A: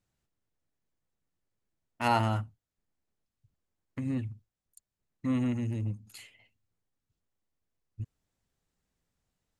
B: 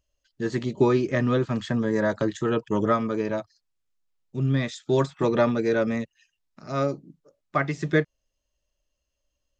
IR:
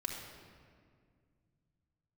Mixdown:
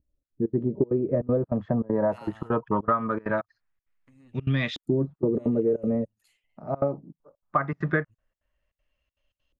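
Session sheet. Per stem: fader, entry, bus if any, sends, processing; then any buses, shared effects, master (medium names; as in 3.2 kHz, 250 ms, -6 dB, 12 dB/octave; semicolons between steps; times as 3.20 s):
-18.0 dB, 0.10 s, no send, bass shelf 410 Hz -8.5 dB
+2.5 dB, 0.00 s, no send, peaking EQ 370 Hz -4.5 dB 0.77 oct; trance gate "xxx.xx.xxxx.x" 198 bpm -24 dB; LFO low-pass saw up 0.21 Hz 290–3100 Hz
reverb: none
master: compression 6:1, threshold -20 dBFS, peak gain reduction 10.5 dB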